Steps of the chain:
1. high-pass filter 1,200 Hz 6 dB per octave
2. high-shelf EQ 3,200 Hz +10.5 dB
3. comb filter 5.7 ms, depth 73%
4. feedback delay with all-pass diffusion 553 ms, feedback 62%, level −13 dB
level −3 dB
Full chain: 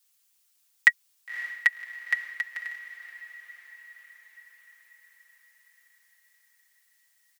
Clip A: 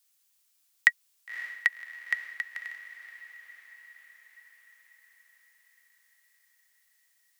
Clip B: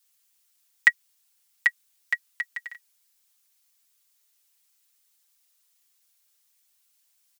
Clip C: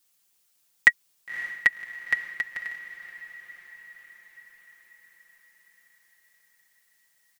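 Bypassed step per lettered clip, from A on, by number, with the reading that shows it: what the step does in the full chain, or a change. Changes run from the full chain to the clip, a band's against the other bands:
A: 3, change in crest factor +2.0 dB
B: 4, echo-to-direct ratio −11.0 dB to none audible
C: 1, change in integrated loudness +1.5 LU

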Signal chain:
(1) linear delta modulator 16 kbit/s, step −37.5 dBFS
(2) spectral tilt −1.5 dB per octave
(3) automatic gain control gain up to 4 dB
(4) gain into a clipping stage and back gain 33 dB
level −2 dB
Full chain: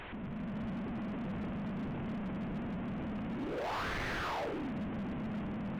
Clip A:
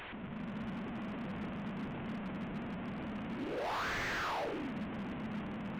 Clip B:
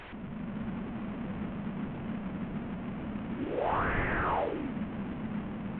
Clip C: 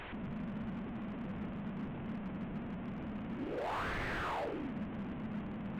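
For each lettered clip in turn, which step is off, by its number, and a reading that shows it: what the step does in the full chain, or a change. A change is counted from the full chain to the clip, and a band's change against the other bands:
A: 2, 125 Hz band −4.0 dB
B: 4, distortion level −7 dB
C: 3, change in momentary loudness spread +2 LU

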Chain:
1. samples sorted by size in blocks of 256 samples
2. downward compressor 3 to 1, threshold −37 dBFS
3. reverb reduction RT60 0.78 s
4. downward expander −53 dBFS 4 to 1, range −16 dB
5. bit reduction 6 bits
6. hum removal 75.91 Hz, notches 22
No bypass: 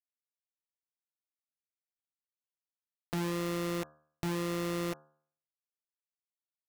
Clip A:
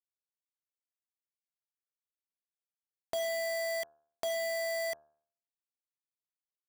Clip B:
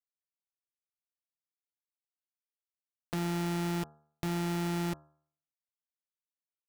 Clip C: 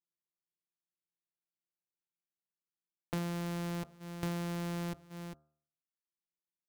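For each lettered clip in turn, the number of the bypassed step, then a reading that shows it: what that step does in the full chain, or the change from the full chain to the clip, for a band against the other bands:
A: 1, 1 kHz band −4.0 dB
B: 3, 500 Hz band −4.0 dB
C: 5, distortion level −4 dB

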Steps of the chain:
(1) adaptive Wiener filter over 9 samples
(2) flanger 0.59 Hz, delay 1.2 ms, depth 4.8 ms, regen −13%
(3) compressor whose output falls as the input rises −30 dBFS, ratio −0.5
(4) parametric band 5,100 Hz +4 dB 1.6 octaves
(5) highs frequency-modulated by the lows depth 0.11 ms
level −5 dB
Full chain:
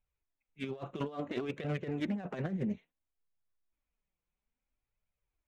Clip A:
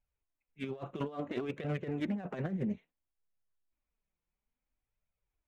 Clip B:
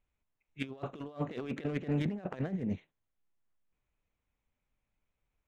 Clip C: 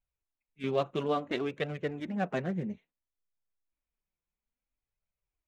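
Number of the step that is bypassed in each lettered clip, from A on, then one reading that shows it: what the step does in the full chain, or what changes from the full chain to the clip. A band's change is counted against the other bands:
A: 4, 4 kHz band −2.5 dB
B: 2, 125 Hz band +3.0 dB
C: 3, change in crest factor +4.5 dB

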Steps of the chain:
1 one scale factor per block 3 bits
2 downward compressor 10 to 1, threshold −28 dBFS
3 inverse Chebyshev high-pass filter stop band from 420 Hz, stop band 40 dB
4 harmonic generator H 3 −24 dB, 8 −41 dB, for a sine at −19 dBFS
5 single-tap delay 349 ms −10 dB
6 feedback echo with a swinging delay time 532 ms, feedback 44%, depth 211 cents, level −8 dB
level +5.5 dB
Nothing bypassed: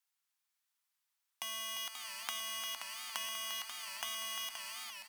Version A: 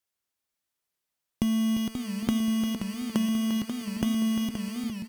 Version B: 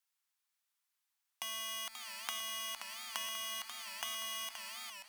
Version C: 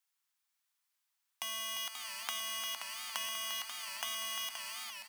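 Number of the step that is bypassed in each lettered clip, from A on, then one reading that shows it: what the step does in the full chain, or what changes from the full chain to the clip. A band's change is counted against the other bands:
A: 3, change in crest factor −13.0 dB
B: 5, 250 Hz band +2.0 dB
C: 4, change in crest factor −1.5 dB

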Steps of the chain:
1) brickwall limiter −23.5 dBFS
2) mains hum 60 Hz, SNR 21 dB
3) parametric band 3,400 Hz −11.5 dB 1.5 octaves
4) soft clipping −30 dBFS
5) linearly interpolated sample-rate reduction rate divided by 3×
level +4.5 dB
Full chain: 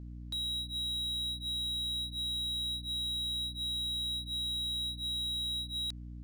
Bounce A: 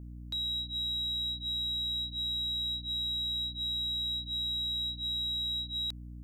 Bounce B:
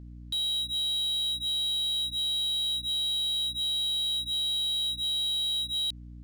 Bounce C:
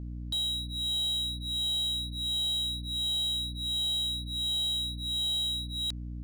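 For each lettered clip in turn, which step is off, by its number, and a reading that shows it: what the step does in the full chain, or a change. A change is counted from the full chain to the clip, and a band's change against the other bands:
5, change in integrated loudness +1.5 LU
3, change in crest factor −4.0 dB
1, average gain reduction 5.0 dB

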